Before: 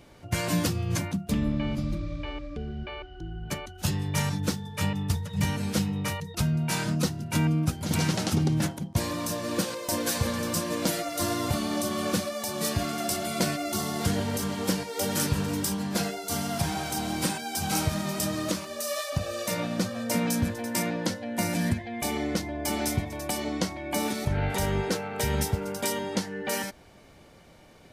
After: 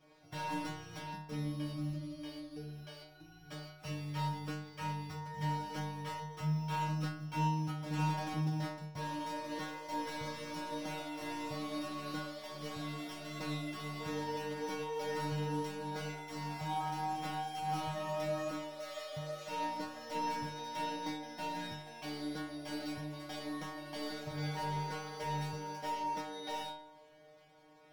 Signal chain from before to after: sample sorter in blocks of 8 samples; overdrive pedal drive 13 dB, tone 2000 Hz, clips at -13 dBFS; metallic resonator 150 Hz, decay 0.75 s, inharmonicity 0.002; gain +4 dB

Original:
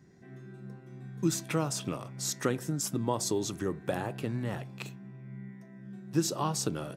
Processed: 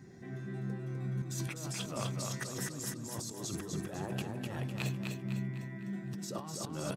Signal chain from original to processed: bin magnitudes rounded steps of 15 dB; negative-ratio compressor -41 dBFS, ratio -1; feedback echo 0.252 s, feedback 45%, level -4 dB

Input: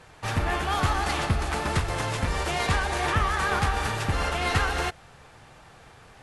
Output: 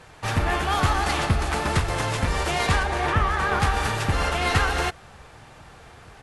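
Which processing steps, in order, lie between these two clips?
2.83–3.6 high shelf 3700 Hz -9 dB; outdoor echo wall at 260 m, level -29 dB; gain +3 dB

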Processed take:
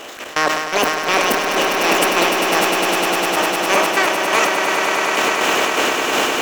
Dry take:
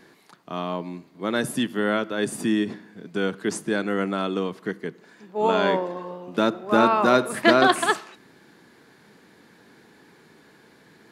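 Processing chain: per-bin compression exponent 0.6; dynamic EQ 5100 Hz, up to +4 dB, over -45 dBFS, Q 2.4; harmonic-percussive split percussive +5 dB; transient shaper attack -12 dB, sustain +11 dB; AGC gain up to 15.5 dB; step gate "xx.x..x..xx..x." 72 bpm -24 dB; on a send: swelling echo 0.175 s, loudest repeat 8, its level -7.5 dB; on the sum: speed mistake 45 rpm record played at 78 rpm; sustainer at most 47 dB/s; gain -1.5 dB

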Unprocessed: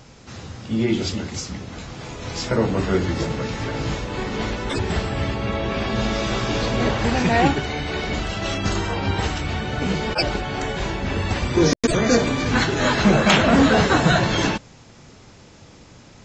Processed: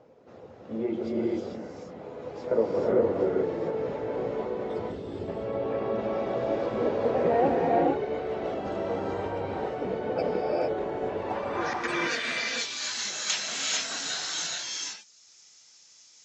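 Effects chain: band-pass sweep 510 Hz -> 6000 Hz, 11.06–12.59; 4.48–5.28 band shelf 1000 Hz -10.5 dB 2.8 oct; reverb removal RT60 0.63 s; non-linear reverb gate 0.48 s rising, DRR -3 dB

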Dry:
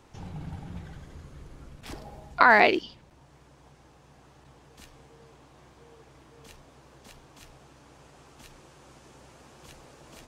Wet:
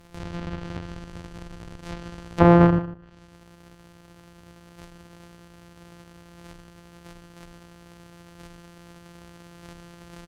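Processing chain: sample sorter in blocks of 256 samples; outdoor echo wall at 26 m, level -15 dB; treble ducked by the level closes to 1000 Hz, closed at -28 dBFS; gain +5 dB

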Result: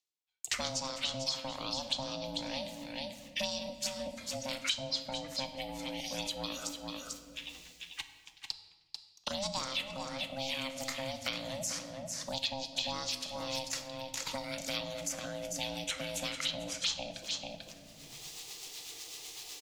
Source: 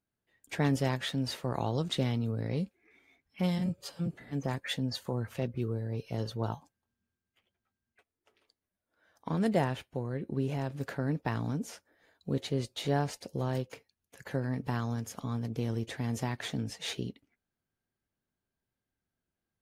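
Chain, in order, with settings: band shelf 4500 Hz +10 dB; gate -56 dBFS, range -50 dB; envelope phaser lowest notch 180 Hz, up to 2500 Hz, full sweep at -25 dBFS; reverse; upward compressor, threshold -33 dBFS; reverse; rotary speaker horn 1.2 Hz, later 8 Hz, at 13.53; ring modulator 400 Hz; tilt shelf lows -8.5 dB, about 910 Hz; on a send: echo 0.442 s -11 dB; on the sum: shoebox room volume 390 m³, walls mixed, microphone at 0.46 m; three-band squash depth 100%

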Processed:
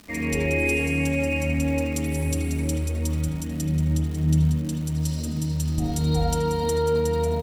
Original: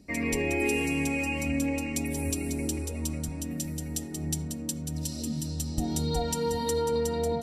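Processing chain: 3.61–4.75 tone controls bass +6 dB, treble -7 dB; crackle 310/s -36 dBFS; echo 78 ms -14.5 dB; reverb RT60 0.70 s, pre-delay 38 ms, DRR -1 dB

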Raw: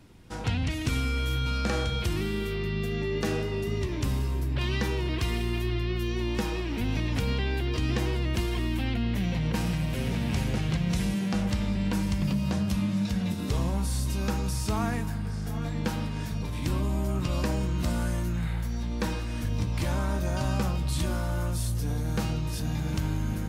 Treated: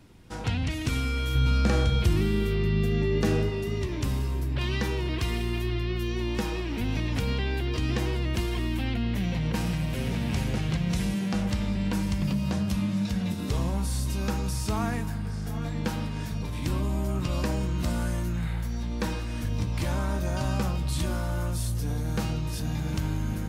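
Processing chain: 1.35–3.5 low shelf 340 Hz +7 dB

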